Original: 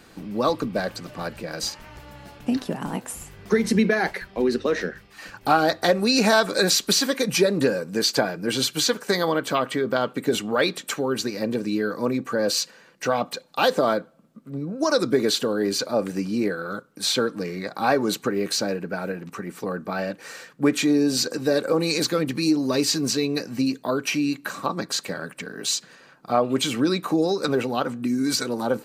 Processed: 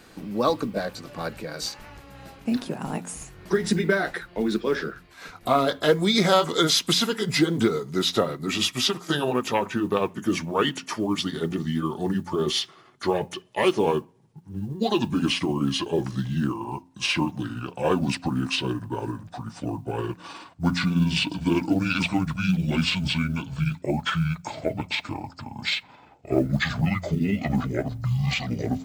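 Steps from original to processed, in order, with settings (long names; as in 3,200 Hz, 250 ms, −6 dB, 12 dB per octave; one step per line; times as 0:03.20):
pitch glide at a constant tempo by −12 semitones starting unshifted
hum removal 88.26 Hz, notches 3
noise that follows the level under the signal 35 dB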